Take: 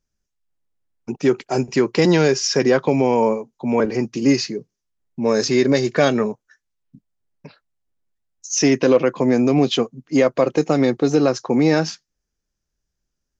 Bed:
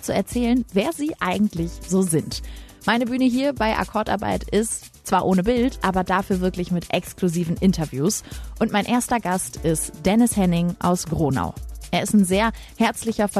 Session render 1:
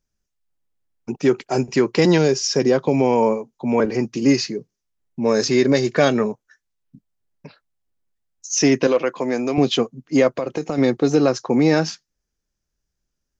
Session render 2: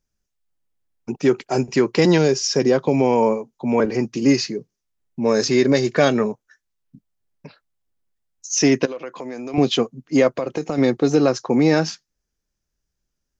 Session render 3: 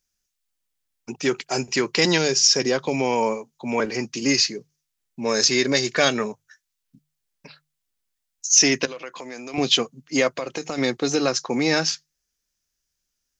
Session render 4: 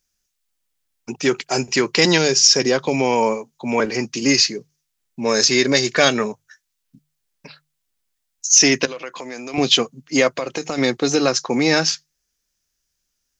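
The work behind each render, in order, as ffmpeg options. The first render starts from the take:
-filter_complex "[0:a]asettb=1/sr,asplit=3[s0][s1][s2];[s0]atrim=end=2.184[s3];[s1]atrim=start=2.18:end=2.94,asetpts=PTS-STARTPTS,afade=t=in:d=0.004:c=qsin,afade=t=out:st=0.756:d=0.004:c=qsin,equalizer=f=1700:t=o:w=1.8:g=-6.5[s4];[s2]atrim=start=2.936[s5];[s3][s4]acrossfade=d=0.004:c1=hsin:c2=qsin[s6];[s6][s5]acrossfade=d=0.004:c1=qsin:c2=hsin,asettb=1/sr,asplit=3[s7][s8][s9];[s7]atrim=end=8.874[s10];[s8]atrim=start=8.87:end=9.58,asetpts=PTS-STARTPTS,afade=t=in:d=0.004:c=qsin,afade=t=out:st=0.706:d=0.004:c=qsin,highpass=f=540:p=1[s11];[s9]atrim=start=9.576[s12];[s10][s11]acrossfade=d=0.004:c1=hsin:c2=qsin[s13];[s13][s12]acrossfade=d=0.004:c1=qsin:c2=hsin,asettb=1/sr,asplit=3[s14][s15][s16];[s14]atrim=end=10.324[s17];[s15]atrim=start=10.32:end=10.78,asetpts=PTS-STARTPTS,afade=t=in:d=0.004:c=qsin,afade=t=out:st=0.456:d=0.004:c=qsin,acompressor=threshold=0.112:ratio=6:attack=3.2:release=140:knee=1:detection=peak[s18];[s16]atrim=start=10.776[s19];[s17][s18]acrossfade=d=0.004:c1=hsin:c2=qsin[s20];[s20][s19]acrossfade=d=0.004:c1=qsin:c2=hsin"
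-filter_complex "[0:a]asettb=1/sr,asplit=3[s0][s1][s2];[s0]atrim=end=8.854[s3];[s1]atrim=start=8.85:end=9.54,asetpts=PTS-STARTPTS,afade=t=in:d=0.004:c=qsin,afade=t=out:st=0.686:d=0.004:c=qsin,acompressor=threshold=0.0355:ratio=4:attack=3.2:release=140:knee=1:detection=peak[s4];[s2]atrim=start=9.536[s5];[s3][s4]acrossfade=d=0.004:c1=hsin:c2=qsin[s6];[s6][s5]acrossfade=d=0.004:c1=qsin:c2=hsin"
-af "tiltshelf=f=1300:g=-7.5,bandreject=f=50:t=h:w=6,bandreject=f=100:t=h:w=6,bandreject=f=150:t=h:w=6"
-af "volume=1.58,alimiter=limit=0.891:level=0:latency=1"

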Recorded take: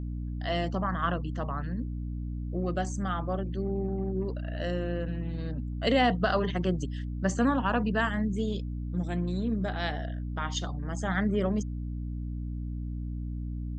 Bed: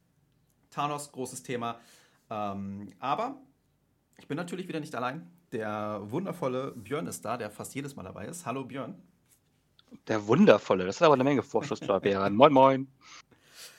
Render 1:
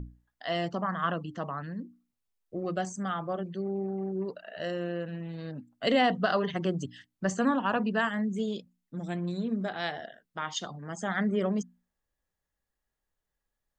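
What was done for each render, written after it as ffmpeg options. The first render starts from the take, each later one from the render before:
-af "bandreject=f=60:t=h:w=6,bandreject=f=120:t=h:w=6,bandreject=f=180:t=h:w=6,bandreject=f=240:t=h:w=6,bandreject=f=300:t=h:w=6"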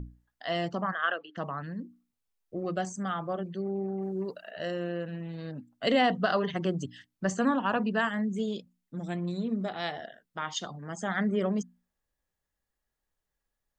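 -filter_complex "[0:a]asplit=3[s0][s1][s2];[s0]afade=t=out:st=0.91:d=0.02[s3];[s1]highpass=f=410:w=0.5412,highpass=f=410:w=1.3066,equalizer=f=1000:t=q:w=4:g=-10,equalizer=f=1600:t=q:w=4:g=10,equalizer=f=3000:t=q:w=4:g=5,lowpass=f=4200:w=0.5412,lowpass=f=4200:w=1.3066,afade=t=in:st=0.91:d=0.02,afade=t=out:st=1.36:d=0.02[s4];[s2]afade=t=in:st=1.36:d=0.02[s5];[s3][s4][s5]amix=inputs=3:normalize=0,asettb=1/sr,asplit=3[s6][s7][s8];[s6]atrim=end=4.024[s9];[s7]atrim=start=4.02:end=4.51,asetpts=PTS-STARTPTS,afade=t=in:d=0.004:c=qsin,afade=t=out:st=0.486:d=0.004:c=qsin,aemphasis=mode=production:type=cd[s10];[s8]atrim=start=4.506[s11];[s9][s10]acrossfade=d=0.004:c1=hsin:c2=qsin[s12];[s12][s11]acrossfade=d=0.004:c1=qsin:c2=hsin,asettb=1/sr,asplit=3[s13][s14][s15];[s13]atrim=end=9.164[s16];[s14]atrim=start=9.16:end=10,asetpts=PTS-STARTPTS,afade=t=in:d=0.004:c=qsin,afade=t=out:st=0.836:d=0.004:c=qsin,bandreject=f=1600:w=8.2[s17];[s15]atrim=start=9.996[s18];[s16][s17]acrossfade=d=0.004:c1=hsin:c2=qsin[s19];[s19][s18]acrossfade=d=0.004:c1=qsin:c2=hsin"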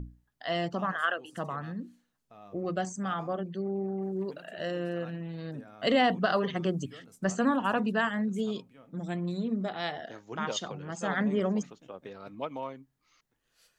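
-filter_complex "[1:a]volume=0.126[s0];[0:a][s0]amix=inputs=2:normalize=0"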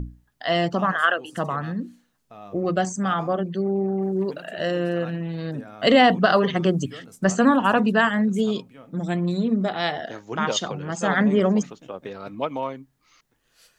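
-af "volume=2.82"

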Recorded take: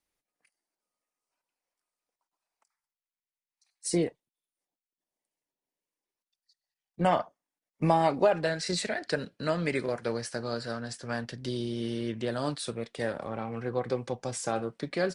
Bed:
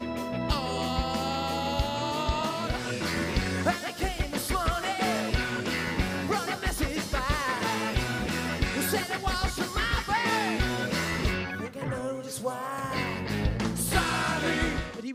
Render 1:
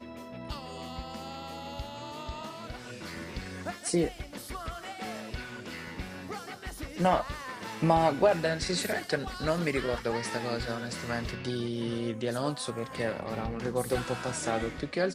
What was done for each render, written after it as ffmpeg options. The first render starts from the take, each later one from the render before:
-filter_complex "[1:a]volume=0.282[s0];[0:a][s0]amix=inputs=2:normalize=0"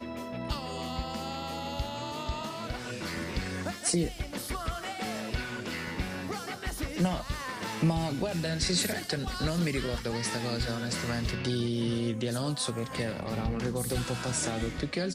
-filter_complex "[0:a]asplit=2[s0][s1];[s1]alimiter=limit=0.0794:level=0:latency=1:release=21,volume=0.891[s2];[s0][s2]amix=inputs=2:normalize=0,acrossover=split=250|3000[s3][s4][s5];[s4]acompressor=threshold=0.02:ratio=6[s6];[s3][s6][s5]amix=inputs=3:normalize=0"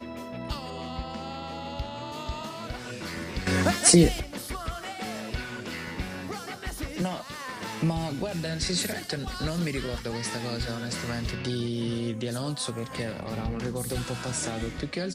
-filter_complex "[0:a]asettb=1/sr,asplit=3[s0][s1][s2];[s0]atrim=end=0.704[s3];[s1]atrim=start=0.7:end=2.12,asetpts=PTS-STARTPTS,afade=t=in:d=0.004:c=qsin,afade=t=out:st=1.416:d=0.004:c=qsin,adynamicsmooth=sensitivity=4.5:basefreq=5000[s4];[s2]atrim=start=2.116[s5];[s3][s4]acrossfade=d=0.004:c1=hsin:c2=qsin[s6];[s6][s5]acrossfade=d=0.004:c1=qsin:c2=hsin,asettb=1/sr,asplit=3[s7][s8][s9];[s7]atrim=end=7.024[s10];[s8]atrim=start=7.02:end=7.49,asetpts=PTS-STARTPTS,afade=t=in:d=0.004:c=qsin,afade=t=out:st=0.466:d=0.004:c=qsin,highpass=190[s11];[s9]atrim=start=7.486[s12];[s10][s11]acrossfade=d=0.004:c1=hsin:c2=qsin[s13];[s13][s12]acrossfade=d=0.004:c1=qsin:c2=hsin,asplit=3[s14][s15][s16];[s14]atrim=end=3.472[s17];[s15]atrim=start=3.468:end=4.202,asetpts=PTS-STARTPTS,volume=3.55[s18];[s16]atrim=start=4.198[s19];[s17][s18]acrossfade=d=0.004:c1=hsin:c2=hsin[s20];[s20][s19]acrossfade=d=0.004:c1=hsin:c2=hsin"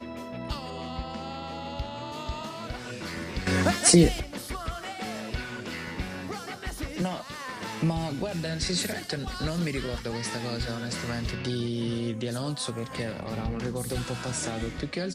-af "highshelf=f=12000:g=-5.5"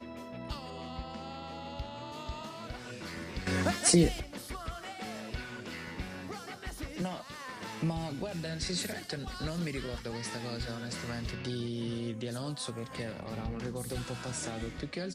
-af "volume=0.501"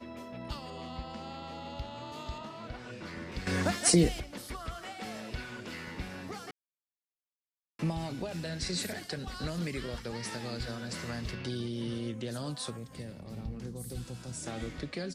-filter_complex "[0:a]asettb=1/sr,asplit=3[s0][s1][s2];[s0]atrim=end=2.384[s3];[s1]atrim=start=2.38:end=3.32,asetpts=PTS-STARTPTS,afade=t=in:d=0.004:c=qsin,afade=t=out:st=0.936:d=0.004:c=qsin,aemphasis=mode=reproduction:type=50kf[s4];[s2]atrim=start=3.316[s5];[s3][s4]acrossfade=d=0.004:c1=hsin:c2=qsin[s6];[s6][s5]acrossfade=d=0.004:c1=qsin:c2=hsin,asplit=3[s7][s8][s9];[s7]afade=t=out:st=12.76:d=0.02[s10];[s8]equalizer=f=1400:w=0.31:g=-12,afade=t=in:st=12.76:d=0.02,afade=t=out:st=14.46:d=0.02[s11];[s9]afade=t=in:st=14.46:d=0.02[s12];[s10][s11][s12]amix=inputs=3:normalize=0,asplit=3[s13][s14][s15];[s13]atrim=end=6.51,asetpts=PTS-STARTPTS,afade=t=out:st=6.506:d=0.004:c=hsin[s16];[s14]atrim=start=6.51:end=7.79,asetpts=PTS-STARTPTS,volume=0[s17];[s15]atrim=start=7.79,asetpts=PTS-STARTPTS,afade=t=in:d=0.004:c=hsin[s18];[s16][s17][s18]concat=n=3:v=0:a=1"

